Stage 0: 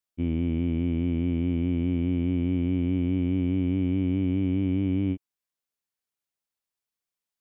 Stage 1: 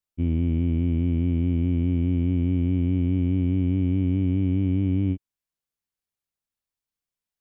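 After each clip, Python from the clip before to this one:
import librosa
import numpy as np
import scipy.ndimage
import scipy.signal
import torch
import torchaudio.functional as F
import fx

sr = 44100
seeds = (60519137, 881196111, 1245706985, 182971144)

y = fx.low_shelf(x, sr, hz=160.0, db=11.0)
y = y * librosa.db_to_amplitude(-2.5)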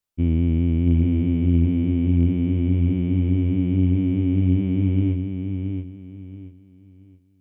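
y = fx.rider(x, sr, range_db=10, speed_s=2.0)
y = fx.echo_feedback(y, sr, ms=677, feedback_pct=28, wet_db=-6.0)
y = y * librosa.db_to_amplitude(2.0)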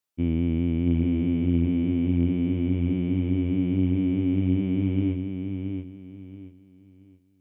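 y = fx.highpass(x, sr, hz=190.0, slope=6)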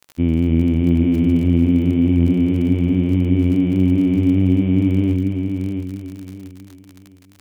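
y = fx.dmg_crackle(x, sr, seeds[0], per_s=33.0, level_db=-35.0)
y = y + 10.0 ** (-9.0 / 20.0) * np.pad(y, (int(276 * sr / 1000.0), 0))[:len(y)]
y = y * librosa.db_to_amplitude(7.5)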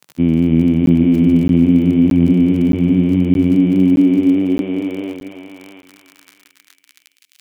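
y = fx.filter_sweep_highpass(x, sr, from_hz=150.0, to_hz=2700.0, start_s=3.4, end_s=7.29, q=1.3)
y = fx.buffer_crackle(y, sr, first_s=0.86, period_s=0.62, block=512, kind='zero')
y = y * librosa.db_to_amplitude(2.5)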